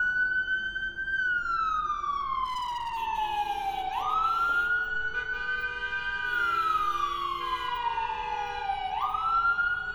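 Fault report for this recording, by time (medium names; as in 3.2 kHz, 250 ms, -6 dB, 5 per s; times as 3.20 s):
2.44–2.98 s: clipped -30 dBFS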